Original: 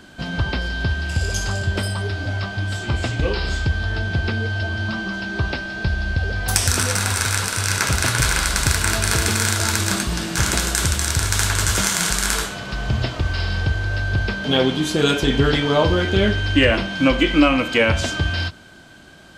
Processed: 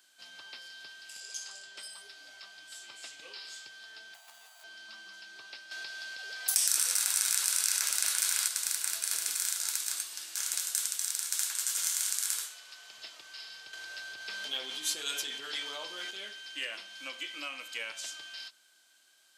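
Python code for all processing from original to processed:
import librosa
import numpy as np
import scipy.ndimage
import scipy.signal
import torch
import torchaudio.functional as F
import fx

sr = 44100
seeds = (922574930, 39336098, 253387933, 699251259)

y = fx.chain(x, sr, fx.lowpass(hz=7800.0, slope=12),
    fx.low_shelf(hz=110.0, db=-7.5), at=(1.2, 1.93))
y = fx.chain(y, sr, fx.median_filter(points=25),
    fx.low_shelf_res(hz=550.0, db=-11.5, q=3.0), at=(4.14, 4.64))
y = fx.chain(y, sr, fx.low_shelf(hz=210.0, db=-10.5),
    fx.env_flatten(amount_pct=70), at=(5.71, 8.48))
y = fx.chain(y, sr, fx.highpass(hz=410.0, slope=6),
    fx.notch(hz=650.0, q=20.0), at=(9.35, 12.97))
y = fx.chain(y, sr, fx.high_shelf(hz=12000.0, db=-3.5),
    fx.env_flatten(amount_pct=70), at=(13.73, 16.11))
y = scipy.signal.sosfilt(scipy.signal.butter(2, 270.0, 'highpass', fs=sr, output='sos'), y)
y = np.diff(y, prepend=0.0)
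y = F.gain(torch.from_numpy(y), -8.5).numpy()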